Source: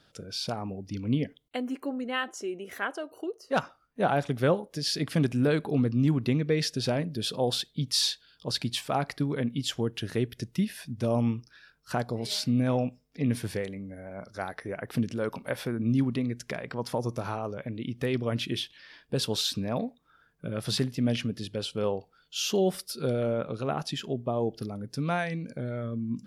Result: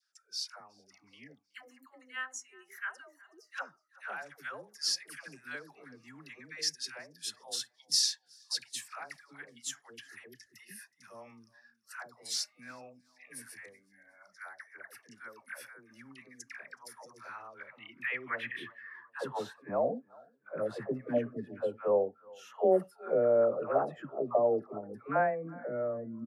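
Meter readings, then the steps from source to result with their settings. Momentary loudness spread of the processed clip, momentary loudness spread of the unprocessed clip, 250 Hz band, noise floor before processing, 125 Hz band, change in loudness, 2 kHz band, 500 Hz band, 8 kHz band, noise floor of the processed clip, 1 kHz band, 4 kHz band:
23 LU, 10 LU, -15.0 dB, -65 dBFS, -21.5 dB, -4.0 dB, -3.5 dB, -2.0 dB, -1.0 dB, -71 dBFS, -4.5 dB, -6.0 dB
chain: FFT filter 310 Hz 0 dB, 670 Hz -3 dB, 1.6 kHz +9 dB, 3.3 kHz -10 dB, 10 kHz +5 dB; feedback delay 371 ms, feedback 43%, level -20.5 dB; dynamic bell 630 Hz, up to +3 dB, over -41 dBFS, Q 2.1; spectral noise reduction 11 dB; phase dispersion lows, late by 131 ms, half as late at 640 Hz; band-pass sweep 5.5 kHz -> 590 Hz, 17.05–19.80 s; trim +5.5 dB

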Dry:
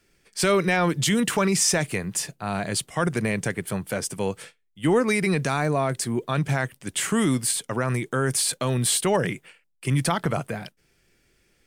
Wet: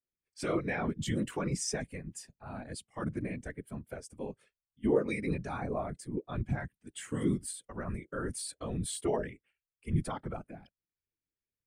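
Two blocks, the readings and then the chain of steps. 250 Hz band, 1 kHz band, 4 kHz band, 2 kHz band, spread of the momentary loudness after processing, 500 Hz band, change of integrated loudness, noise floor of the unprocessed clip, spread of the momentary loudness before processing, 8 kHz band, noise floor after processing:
-10.0 dB, -13.5 dB, -17.0 dB, -15.0 dB, 12 LU, -10.5 dB, -12.0 dB, -67 dBFS, 9 LU, -16.0 dB, under -85 dBFS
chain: whisper effect; spectral contrast expander 1.5:1; trim -8 dB

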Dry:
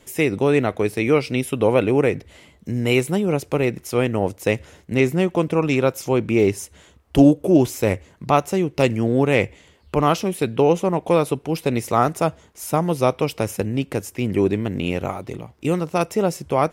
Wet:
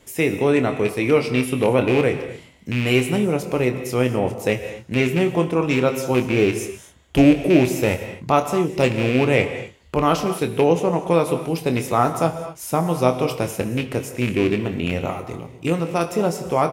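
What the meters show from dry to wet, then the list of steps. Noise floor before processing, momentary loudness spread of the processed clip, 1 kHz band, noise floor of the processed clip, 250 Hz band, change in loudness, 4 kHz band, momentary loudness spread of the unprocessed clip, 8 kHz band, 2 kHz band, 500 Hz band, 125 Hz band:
-54 dBFS, 9 LU, 0.0 dB, -46 dBFS, 0.0 dB, 0.0 dB, +2.0 dB, 8 LU, 0.0 dB, +2.0 dB, 0.0 dB, 0.0 dB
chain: rattle on loud lows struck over -19 dBFS, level -15 dBFS; doubling 24 ms -8.5 dB; gated-style reverb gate 280 ms flat, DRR 8.5 dB; trim -1 dB

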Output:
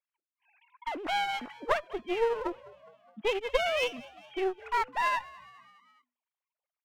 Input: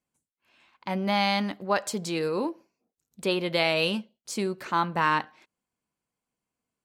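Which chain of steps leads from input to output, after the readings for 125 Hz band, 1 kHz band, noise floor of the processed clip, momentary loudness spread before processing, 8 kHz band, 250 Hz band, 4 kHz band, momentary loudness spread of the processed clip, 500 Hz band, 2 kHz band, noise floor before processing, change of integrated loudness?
under -20 dB, -3.0 dB, under -85 dBFS, 10 LU, -10.5 dB, -11.0 dB, -6.5 dB, 13 LU, -2.0 dB, -3.5 dB, under -85 dBFS, -4.0 dB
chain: formants replaced by sine waves; bass shelf 420 Hz -4.5 dB; one-sided clip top -38 dBFS; transient shaper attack +5 dB, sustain -11 dB; frequency-shifting echo 207 ms, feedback 56%, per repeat +61 Hz, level -21 dB

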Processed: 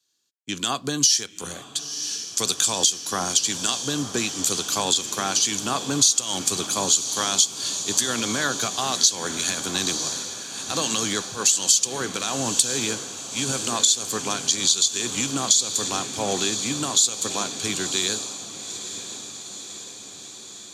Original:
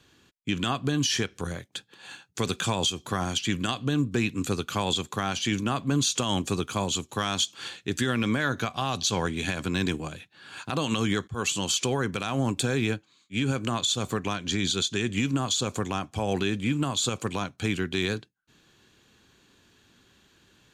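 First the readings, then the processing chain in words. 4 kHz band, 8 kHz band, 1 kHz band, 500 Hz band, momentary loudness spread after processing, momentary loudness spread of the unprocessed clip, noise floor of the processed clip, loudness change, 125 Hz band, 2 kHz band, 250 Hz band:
+6.5 dB, +14.0 dB, +2.5 dB, 0.0 dB, 13 LU, 7 LU, -41 dBFS, +6.0 dB, -7.5 dB, +0.5 dB, -3.0 dB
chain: high-pass 440 Hz 6 dB/octave; resonant high shelf 3.6 kHz +11 dB, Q 1.5; on a send: echo that smears into a reverb 984 ms, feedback 76%, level -11 dB; on the sum: compression 6:1, threshold -22 dBFS, peak gain reduction 11.5 dB; three bands expanded up and down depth 70%; trim +4 dB

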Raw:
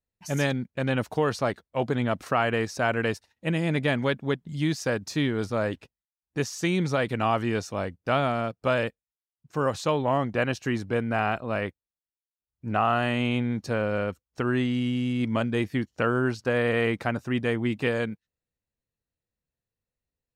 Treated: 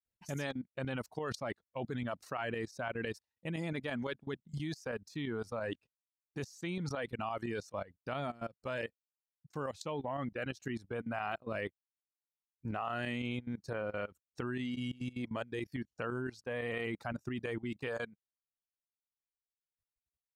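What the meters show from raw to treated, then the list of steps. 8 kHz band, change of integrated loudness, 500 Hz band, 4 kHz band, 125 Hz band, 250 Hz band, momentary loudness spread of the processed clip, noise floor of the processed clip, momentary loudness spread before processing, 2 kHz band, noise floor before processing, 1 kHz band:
-13.5 dB, -12.5 dB, -12.5 dB, -12.0 dB, -13.0 dB, -12.5 dB, 5 LU, under -85 dBFS, 6 LU, -12.0 dB, under -85 dBFS, -13.5 dB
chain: reverb removal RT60 1.7 s; tremolo saw up 5.9 Hz, depth 65%; level held to a coarse grid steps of 19 dB; trim +1 dB

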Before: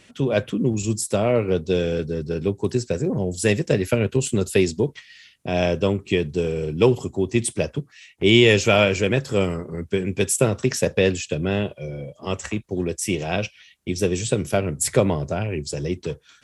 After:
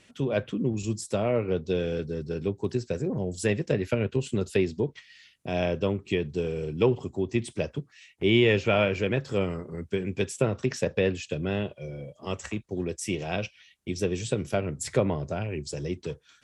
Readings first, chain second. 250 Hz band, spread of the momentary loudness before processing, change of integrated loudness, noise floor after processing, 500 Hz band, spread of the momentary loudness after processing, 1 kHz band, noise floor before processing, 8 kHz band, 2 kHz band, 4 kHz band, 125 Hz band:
-6.0 dB, 9 LU, -6.5 dB, -61 dBFS, -6.0 dB, 9 LU, -6.0 dB, -55 dBFS, -12.0 dB, -7.0 dB, -9.0 dB, -6.0 dB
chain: low-pass that closes with the level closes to 2.9 kHz, closed at -14.5 dBFS; trim -6 dB

